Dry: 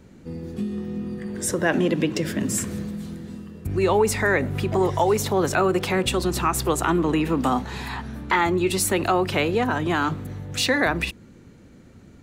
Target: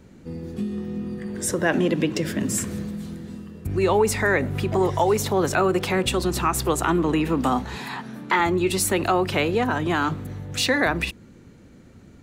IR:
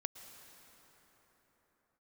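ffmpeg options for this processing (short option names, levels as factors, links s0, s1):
-filter_complex "[0:a]asettb=1/sr,asplit=3[s0][s1][s2];[s0]atrim=end=7.764[s3];[s1]atrim=start=7.76:end=8.4,asetpts=PTS-STARTPTS,afade=t=in:d=0.004:c=qsin,afade=t=out:st=0.636:d=0.004:c=qsin,highpass=f=140:w=0.5412,highpass=f=140:w=1.3066[s4];[s2]atrim=start=8.396[s5];[s3][s4]acrossfade=d=0.004:c1=hsin:c2=qsin[s6];[s6][s5]acrossfade=d=0.004:c1=qsin:c2=hsin"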